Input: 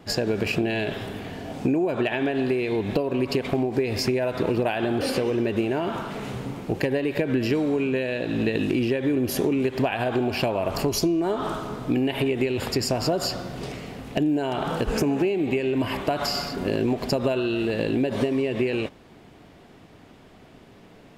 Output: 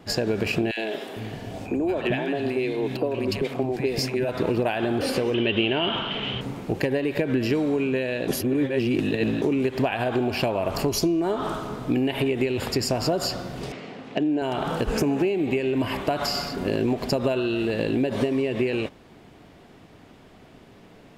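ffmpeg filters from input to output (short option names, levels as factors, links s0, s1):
-filter_complex "[0:a]asettb=1/sr,asplit=3[s0][s1][s2];[s0]atrim=end=0.714[s3];[s1]atrim=start=0.71:end=4.29,asetpts=PTS-STARTPTS,afade=t=in:d=0.004:c=qsin,afade=t=out:st=3.576:d=0.004:c=qsin,acrossover=split=230|1300[s4][s5][s6];[s5]adelay=60[s7];[s4]adelay=450[s8];[s8][s7][s6]amix=inputs=3:normalize=0,atrim=end_sample=157878[s9];[s2]atrim=start=4.286[s10];[s3][s9]acrossfade=d=0.004:c1=hsin:c2=qsin[s11];[s11][s10]acrossfade=d=0.004:c1=qsin:c2=hsin,asettb=1/sr,asplit=3[s12][s13][s14];[s12]atrim=end=5.344[s15];[s13]atrim=start=5.34:end=6.41,asetpts=PTS-STARTPTS,afade=t=in:d=0.004:c=qsin,afade=t=out:st=1.066:d=0.004:c=qsin,lowpass=f=3100:t=q:w=12[s16];[s14]atrim=start=6.406[s17];[s15][s16]acrossfade=d=0.004:c1=hsin:c2=qsin[s18];[s18][s17]acrossfade=d=0.004:c1=qsin:c2=hsin,asettb=1/sr,asplit=3[s19][s20][s21];[s19]atrim=end=13.724[s22];[s20]atrim=start=13.72:end=14.42,asetpts=PTS-STARTPTS,afade=t=in:d=0.004:c=qsin,afade=t=out:st=0.696:d=0.004:c=qsin,highpass=200,lowpass=4500[s23];[s21]atrim=start=14.416[s24];[s22][s23]acrossfade=d=0.004:c1=hsin:c2=qsin[s25];[s25][s24]acrossfade=d=0.004:c1=qsin:c2=hsin,asplit=3[s26][s27][s28];[s26]atrim=end=8.282[s29];[s27]atrim=start=8.278:end=9.422,asetpts=PTS-STARTPTS,areverse[s30];[s28]atrim=start=9.418[s31];[s29][s30]acrossfade=d=0.004:c1=hsin:c2=hsin[s32];[s32][s31]acrossfade=d=0.004:c1=hsin:c2=hsin"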